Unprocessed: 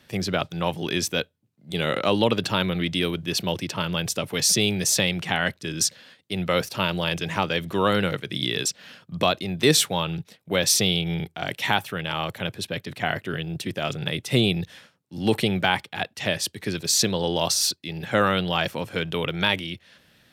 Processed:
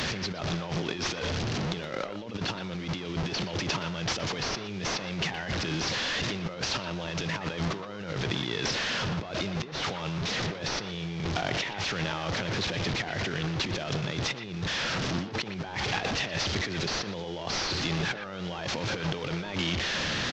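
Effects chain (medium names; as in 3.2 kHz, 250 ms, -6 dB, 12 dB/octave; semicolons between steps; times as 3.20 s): one-bit delta coder 32 kbps, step -29.5 dBFS; compressor with a negative ratio -33 dBFS, ratio -1; speakerphone echo 120 ms, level -9 dB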